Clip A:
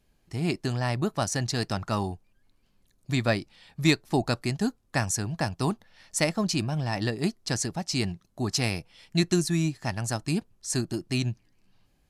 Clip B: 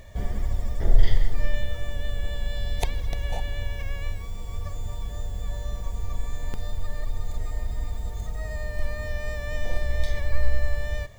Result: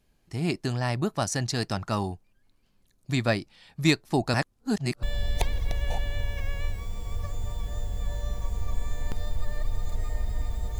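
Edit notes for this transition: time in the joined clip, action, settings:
clip A
4.34–5.03 s: reverse
5.03 s: go over to clip B from 2.45 s

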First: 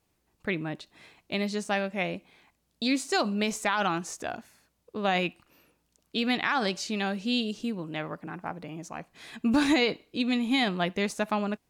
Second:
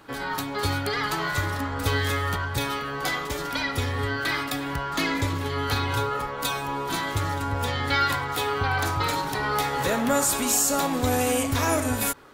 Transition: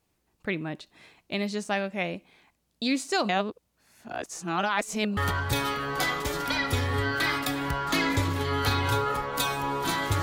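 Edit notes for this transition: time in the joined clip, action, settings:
first
3.29–5.17 s: reverse
5.17 s: go over to second from 2.22 s

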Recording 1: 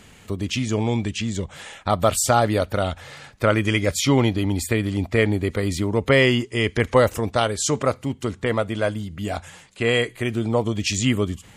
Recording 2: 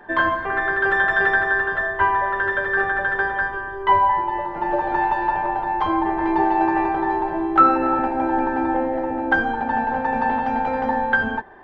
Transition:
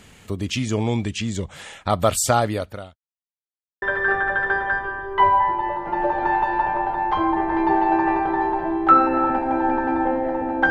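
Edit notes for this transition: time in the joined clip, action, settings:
recording 1
2.30–2.96 s: fade out linear
2.96–3.82 s: mute
3.82 s: go over to recording 2 from 2.51 s

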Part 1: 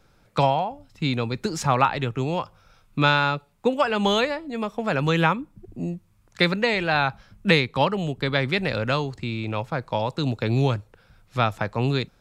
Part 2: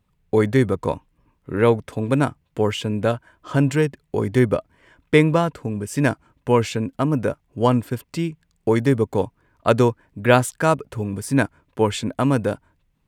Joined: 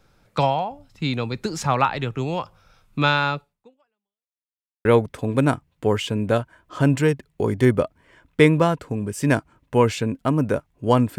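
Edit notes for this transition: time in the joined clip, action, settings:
part 1
3.39–4.36 s: fade out exponential
4.36–4.85 s: mute
4.85 s: go over to part 2 from 1.59 s

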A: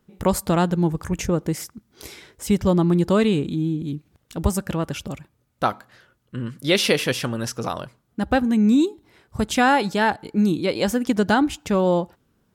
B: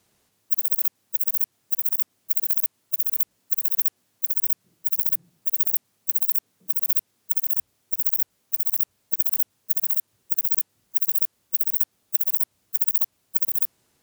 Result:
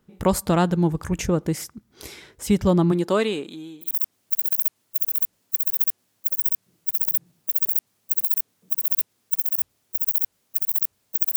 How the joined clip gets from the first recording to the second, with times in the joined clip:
A
2.91–3.93 s: high-pass 220 Hz -> 960 Hz
3.87 s: go over to B from 1.85 s, crossfade 0.12 s

